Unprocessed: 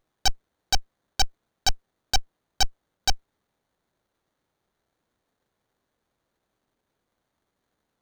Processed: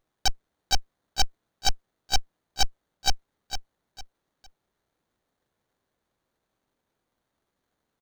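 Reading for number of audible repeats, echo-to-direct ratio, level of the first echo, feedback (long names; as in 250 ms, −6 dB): 3, −8.5 dB, −9.0 dB, 30%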